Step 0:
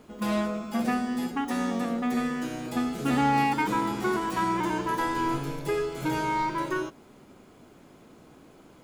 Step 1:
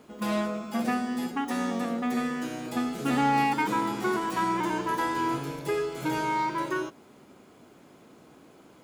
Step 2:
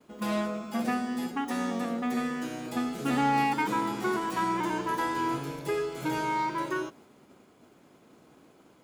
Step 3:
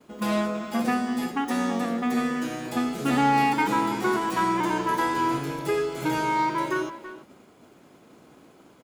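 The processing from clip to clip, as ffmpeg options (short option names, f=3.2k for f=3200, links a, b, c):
-af "highpass=f=140:p=1"
-af "agate=range=-33dB:threshold=-50dB:ratio=3:detection=peak,volume=-1.5dB"
-filter_complex "[0:a]asplit=2[a][b];[b]adelay=330,highpass=300,lowpass=3.4k,asoftclip=type=hard:threshold=-25.5dB,volume=-12dB[c];[a][c]amix=inputs=2:normalize=0,volume=4.5dB"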